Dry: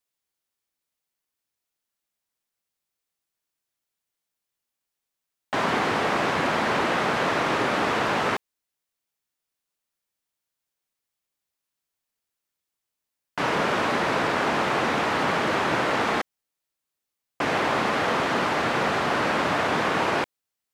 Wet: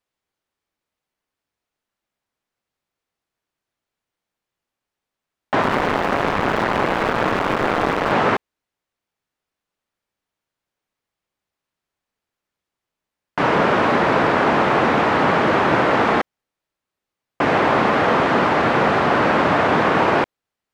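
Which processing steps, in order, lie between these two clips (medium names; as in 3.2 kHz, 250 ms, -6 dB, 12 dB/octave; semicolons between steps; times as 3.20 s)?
5.62–8.12 s: cycle switcher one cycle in 2, muted; low-pass 1.7 kHz 6 dB/octave; trim +8.5 dB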